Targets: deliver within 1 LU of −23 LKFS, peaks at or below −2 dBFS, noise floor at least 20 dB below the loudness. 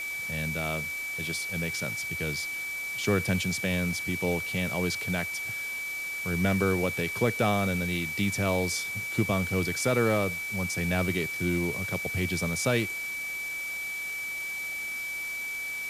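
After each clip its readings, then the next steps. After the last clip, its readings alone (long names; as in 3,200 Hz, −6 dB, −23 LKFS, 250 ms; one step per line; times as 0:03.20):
interfering tone 2,300 Hz; level of the tone −32 dBFS; background noise floor −35 dBFS; target noise floor −49 dBFS; integrated loudness −28.5 LKFS; sample peak −13.0 dBFS; target loudness −23.0 LKFS
→ notch filter 2,300 Hz, Q 30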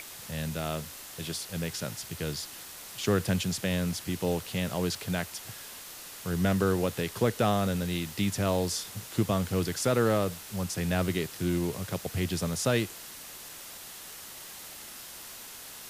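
interfering tone none found; background noise floor −45 dBFS; target noise floor −51 dBFS
→ noise reduction from a noise print 6 dB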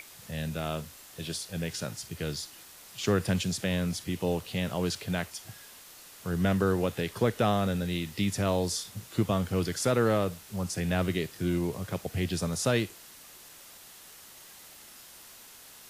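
background noise floor −51 dBFS; integrated loudness −30.5 LKFS; sample peak −14.0 dBFS; target loudness −23.0 LKFS
→ level +7.5 dB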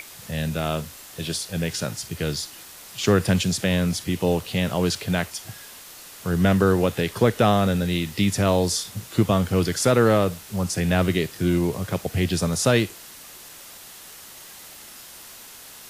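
integrated loudness −23.0 LKFS; sample peak −6.5 dBFS; background noise floor −43 dBFS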